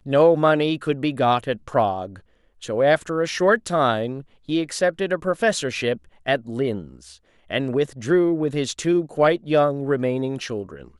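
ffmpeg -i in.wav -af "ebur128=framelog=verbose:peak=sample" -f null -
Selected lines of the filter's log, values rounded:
Integrated loudness:
  I:         -21.7 LUFS
  Threshold: -32.1 LUFS
Loudness range:
  LRA:         2.9 LU
  Threshold: -42.6 LUFS
  LRA low:   -24.5 LUFS
  LRA high:  -21.5 LUFS
Sample peak:
  Peak:       -5.2 dBFS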